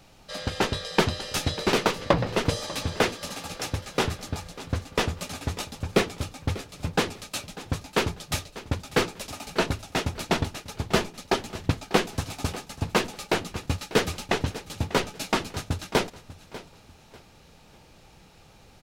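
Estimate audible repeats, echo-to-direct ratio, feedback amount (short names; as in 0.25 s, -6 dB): 2, -16.5 dB, 31%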